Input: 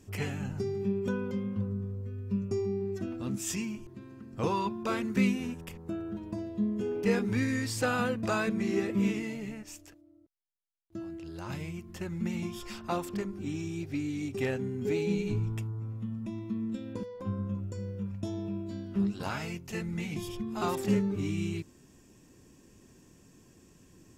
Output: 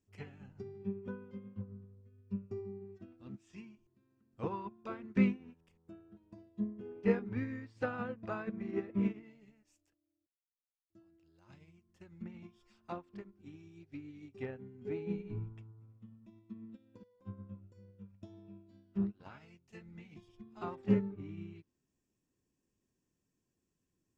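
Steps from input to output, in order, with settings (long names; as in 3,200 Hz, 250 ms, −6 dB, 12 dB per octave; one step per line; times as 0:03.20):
treble cut that deepens with the level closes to 1,900 Hz, closed at −27.5 dBFS
expander for the loud parts 2.5 to 1, over −40 dBFS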